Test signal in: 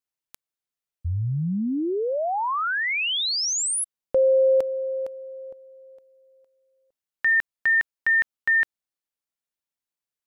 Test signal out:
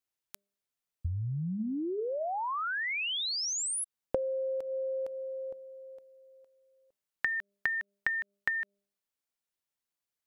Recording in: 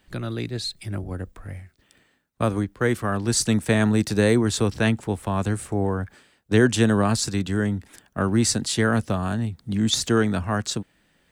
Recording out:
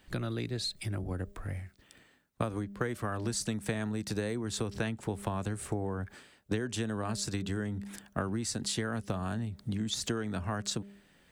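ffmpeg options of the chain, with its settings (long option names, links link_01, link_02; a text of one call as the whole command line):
ffmpeg -i in.wav -af "bandreject=frequency=200.4:width_type=h:width=4,bandreject=frequency=400.8:width_type=h:width=4,bandreject=frequency=601.2:width_type=h:width=4,acompressor=threshold=-32dB:ratio=12:attack=29:release=257:knee=6:detection=peak" out.wav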